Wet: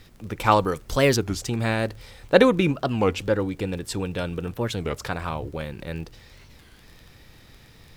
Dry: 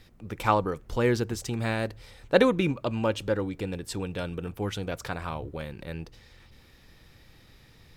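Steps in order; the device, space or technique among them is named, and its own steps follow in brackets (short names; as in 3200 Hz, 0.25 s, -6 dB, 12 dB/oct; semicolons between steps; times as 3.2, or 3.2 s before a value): 0.51–1.19 high shelf 2700 Hz +10.5 dB; warped LP (record warp 33 1/3 rpm, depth 250 cents; crackle 21/s -42 dBFS; pink noise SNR 37 dB); gain +4.5 dB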